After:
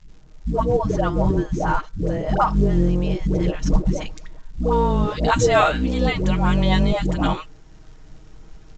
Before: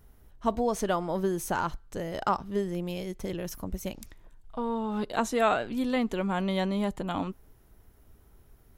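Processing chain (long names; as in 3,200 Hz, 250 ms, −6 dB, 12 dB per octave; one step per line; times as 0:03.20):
sub-octave generator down 2 octaves, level +4 dB
comb filter 6.4 ms, depth 57%
speech leveller within 5 dB 2 s
high-shelf EQ 2,200 Hz −12 dB, from 0:03.28 −7 dB, from 0:04.58 +4 dB
all-pass dispersion highs, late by 149 ms, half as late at 460 Hz
surface crackle 170 per second −51 dBFS
level +7.5 dB
A-law companding 128 kbit/s 16,000 Hz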